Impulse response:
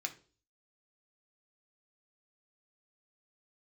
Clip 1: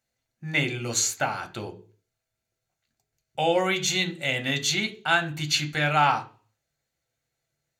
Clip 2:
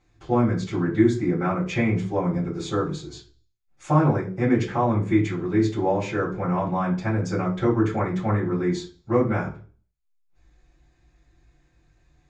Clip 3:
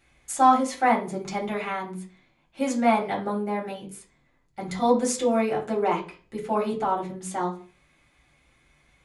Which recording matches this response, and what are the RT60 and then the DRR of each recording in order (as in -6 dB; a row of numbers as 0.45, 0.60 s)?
1; 0.40, 0.40, 0.40 s; 4.0, -8.0, -3.0 dB